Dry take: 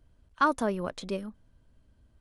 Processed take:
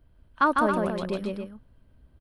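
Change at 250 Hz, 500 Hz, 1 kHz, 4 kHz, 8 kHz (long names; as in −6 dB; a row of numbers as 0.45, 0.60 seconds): +5.0, +4.5, +4.5, +1.5, −3.5 decibels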